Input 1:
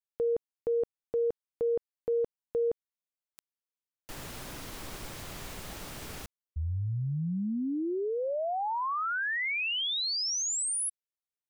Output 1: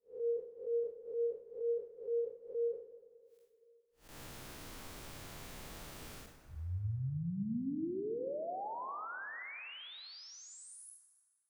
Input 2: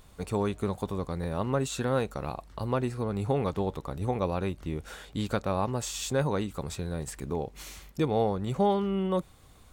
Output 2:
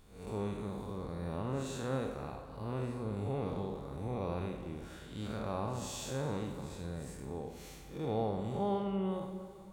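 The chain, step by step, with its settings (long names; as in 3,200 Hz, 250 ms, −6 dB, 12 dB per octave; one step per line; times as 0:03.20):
spectrum smeared in time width 156 ms
dense smooth reverb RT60 2.4 s, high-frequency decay 0.6×, DRR 6.5 dB
level −6.5 dB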